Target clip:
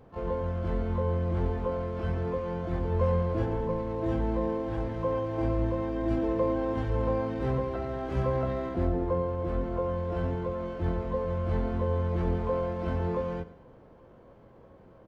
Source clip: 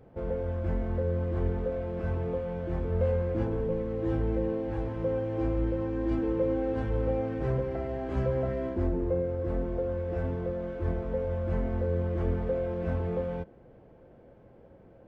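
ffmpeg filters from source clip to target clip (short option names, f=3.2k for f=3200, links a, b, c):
-filter_complex "[0:a]aecho=1:1:105|210|315|420:0.133|0.0573|0.0247|0.0106,asplit=2[a][b];[b]asetrate=88200,aresample=44100,atempo=0.5,volume=-9dB[c];[a][c]amix=inputs=2:normalize=0"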